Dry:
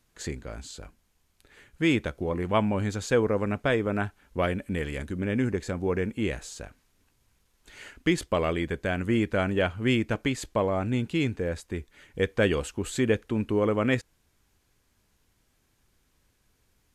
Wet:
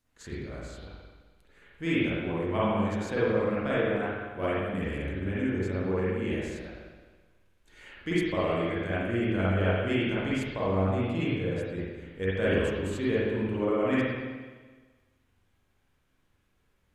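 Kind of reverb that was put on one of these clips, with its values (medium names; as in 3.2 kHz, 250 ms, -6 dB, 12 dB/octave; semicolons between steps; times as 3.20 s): spring tank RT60 1.4 s, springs 42/53 ms, chirp 65 ms, DRR -9 dB; trim -11 dB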